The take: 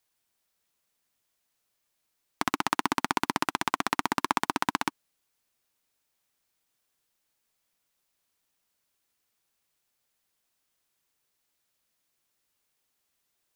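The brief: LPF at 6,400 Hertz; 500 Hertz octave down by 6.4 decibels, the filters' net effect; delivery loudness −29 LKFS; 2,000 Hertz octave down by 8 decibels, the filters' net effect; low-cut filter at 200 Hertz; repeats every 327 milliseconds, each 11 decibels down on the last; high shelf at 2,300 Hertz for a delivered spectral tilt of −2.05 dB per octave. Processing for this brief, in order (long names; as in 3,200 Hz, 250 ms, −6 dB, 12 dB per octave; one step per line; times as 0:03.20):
high-pass filter 200 Hz
low-pass filter 6,400 Hz
parametric band 500 Hz −9 dB
parametric band 2,000 Hz −6.5 dB
high-shelf EQ 2,300 Hz −7 dB
repeating echo 327 ms, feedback 28%, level −11 dB
level +5.5 dB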